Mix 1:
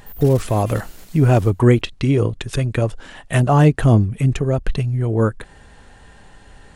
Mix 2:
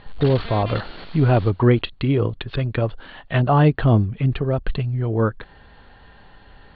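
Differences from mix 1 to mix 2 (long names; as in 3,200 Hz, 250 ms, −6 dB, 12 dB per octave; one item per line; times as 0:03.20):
background +11.5 dB
master: add Chebyshev low-pass with heavy ripple 4,500 Hz, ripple 3 dB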